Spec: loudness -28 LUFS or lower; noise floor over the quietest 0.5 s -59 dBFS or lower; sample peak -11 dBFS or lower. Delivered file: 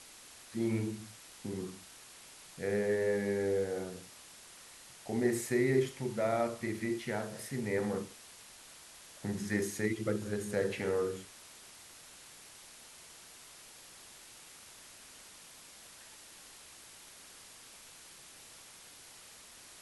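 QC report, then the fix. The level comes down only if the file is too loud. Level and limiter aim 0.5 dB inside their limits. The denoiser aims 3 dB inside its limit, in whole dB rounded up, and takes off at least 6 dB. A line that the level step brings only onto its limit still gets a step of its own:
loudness -34.5 LUFS: OK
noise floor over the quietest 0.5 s -54 dBFS: fail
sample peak -17.0 dBFS: OK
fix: denoiser 8 dB, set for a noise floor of -54 dBFS

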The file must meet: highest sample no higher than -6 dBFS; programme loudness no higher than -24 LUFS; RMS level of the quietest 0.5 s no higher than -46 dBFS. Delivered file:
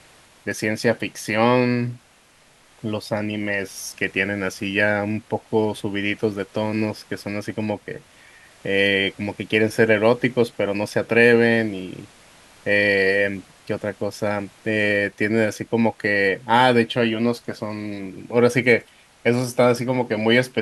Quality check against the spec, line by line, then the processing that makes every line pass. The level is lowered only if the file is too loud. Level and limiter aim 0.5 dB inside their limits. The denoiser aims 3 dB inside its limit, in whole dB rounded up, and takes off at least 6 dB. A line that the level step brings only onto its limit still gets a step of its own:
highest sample -1.5 dBFS: fail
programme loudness -21.0 LUFS: fail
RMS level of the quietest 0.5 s -55 dBFS: OK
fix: gain -3.5 dB; limiter -6.5 dBFS

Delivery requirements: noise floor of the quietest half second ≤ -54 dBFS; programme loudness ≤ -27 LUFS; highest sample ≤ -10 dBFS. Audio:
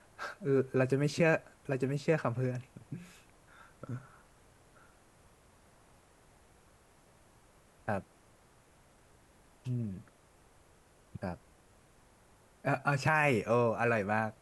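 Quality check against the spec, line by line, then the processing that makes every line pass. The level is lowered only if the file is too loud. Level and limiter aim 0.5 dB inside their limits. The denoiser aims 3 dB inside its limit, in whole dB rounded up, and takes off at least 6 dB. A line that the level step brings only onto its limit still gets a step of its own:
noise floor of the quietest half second -63 dBFS: OK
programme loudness -32.5 LUFS: OK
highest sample -12.5 dBFS: OK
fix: none

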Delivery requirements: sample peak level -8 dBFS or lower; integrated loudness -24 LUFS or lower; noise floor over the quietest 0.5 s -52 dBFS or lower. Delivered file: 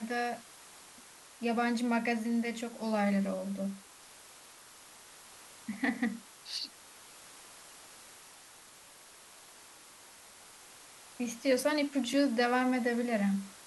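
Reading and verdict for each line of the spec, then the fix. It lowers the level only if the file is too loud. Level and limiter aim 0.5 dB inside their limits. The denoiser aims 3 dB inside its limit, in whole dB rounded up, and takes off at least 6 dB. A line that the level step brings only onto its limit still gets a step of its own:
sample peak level -17.5 dBFS: OK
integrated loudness -32.5 LUFS: OK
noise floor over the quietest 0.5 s -55 dBFS: OK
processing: none

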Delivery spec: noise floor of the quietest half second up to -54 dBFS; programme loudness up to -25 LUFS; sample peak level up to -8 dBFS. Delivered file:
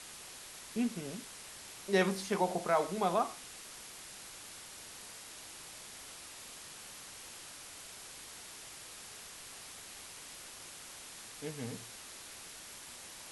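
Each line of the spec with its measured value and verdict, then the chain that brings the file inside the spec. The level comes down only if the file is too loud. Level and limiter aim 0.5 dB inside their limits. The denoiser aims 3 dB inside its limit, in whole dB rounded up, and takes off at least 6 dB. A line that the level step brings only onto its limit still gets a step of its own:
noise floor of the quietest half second -50 dBFS: fail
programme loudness -40.0 LUFS: OK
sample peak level -16.0 dBFS: OK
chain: denoiser 7 dB, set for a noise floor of -50 dBFS

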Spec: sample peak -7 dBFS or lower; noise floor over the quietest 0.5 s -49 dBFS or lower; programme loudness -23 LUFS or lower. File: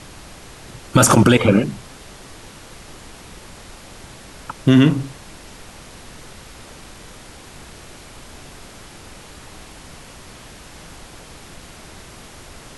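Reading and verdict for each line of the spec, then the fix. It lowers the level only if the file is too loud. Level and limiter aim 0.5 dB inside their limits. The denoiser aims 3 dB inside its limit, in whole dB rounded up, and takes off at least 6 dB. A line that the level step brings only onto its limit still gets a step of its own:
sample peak -2.5 dBFS: fail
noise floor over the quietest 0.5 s -40 dBFS: fail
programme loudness -15.0 LUFS: fail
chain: denoiser 6 dB, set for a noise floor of -40 dBFS; gain -8.5 dB

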